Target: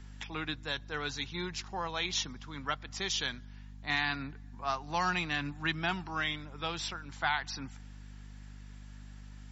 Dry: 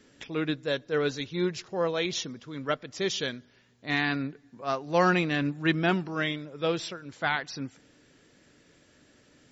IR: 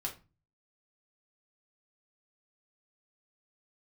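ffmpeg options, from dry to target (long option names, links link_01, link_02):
-filter_complex "[0:a]aeval=exprs='val(0)+0.01*(sin(2*PI*50*n/s)+sin(2*PI*2*50*n/s)/2+sin(2*PI*3*50*n/s)/3+sin(2*PI*4*50*n/s)/4+sin(2*PI*5*50*n/s)/5)':channel_layout=same,acrossover=split=160|3000[link_01][link_02][link_03];[link_02]acompressor=threshold=-31dB:ratio=2.5[link_04];[link_01][link_04][link_03]amix=inputs=3:normalize=0,lowshelf=frequency=670:width_type=q:width=3:gain=-6.5"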